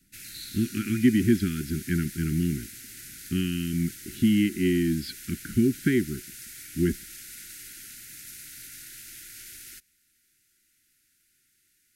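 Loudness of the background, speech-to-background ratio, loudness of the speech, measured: -41.0 LUFS, 14.5 dB, -26.5 LUFS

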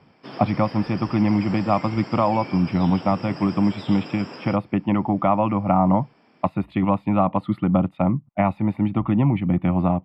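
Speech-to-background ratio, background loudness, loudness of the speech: 15.5 dB, -37.5 LUFS, -22.0 LUFS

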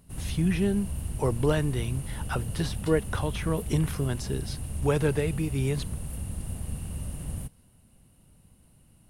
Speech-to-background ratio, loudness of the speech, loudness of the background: 6.5 dB, -29.5 LUFS, -36.0 LUFS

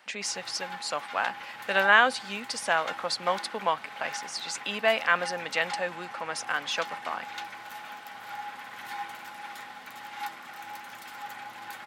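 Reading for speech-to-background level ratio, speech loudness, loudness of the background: 11.5 dB, -28.5 LUFS, -40.0 LUFS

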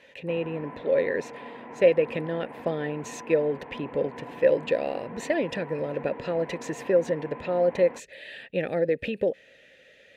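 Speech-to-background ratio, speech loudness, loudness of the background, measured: 14.5 dB, -27.5 LUFS, -42.0 LUFS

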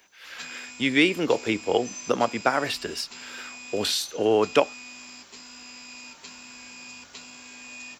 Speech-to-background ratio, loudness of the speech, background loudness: 15.5 dB, -25.0 LUFS, -40.5 LUFS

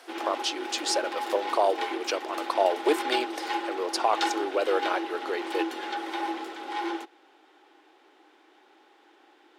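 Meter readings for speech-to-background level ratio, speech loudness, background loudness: 4.0 dB, -29.0 LUFS, -33.0 LUFS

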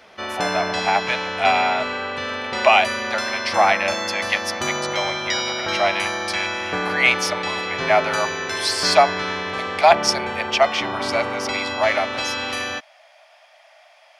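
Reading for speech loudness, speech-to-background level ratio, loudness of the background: -21.5 LUFS, 3.0 dB, -24.5 LUFS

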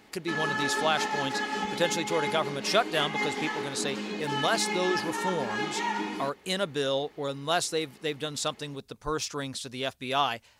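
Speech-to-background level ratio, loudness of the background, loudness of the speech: 1.0 dB, -31.5 LUFS, -30.5 LUFS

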